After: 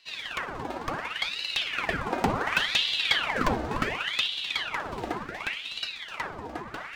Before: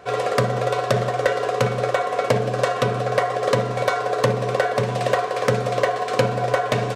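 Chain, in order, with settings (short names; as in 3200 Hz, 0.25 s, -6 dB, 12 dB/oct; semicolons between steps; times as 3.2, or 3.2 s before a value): median filter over 5 samples; Doppler pass-by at 2.93, 11 m/s, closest 11 m; ring modulator with a swept carrier 1800 Hz, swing 90%, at 0.69 Hz; gain -2 dB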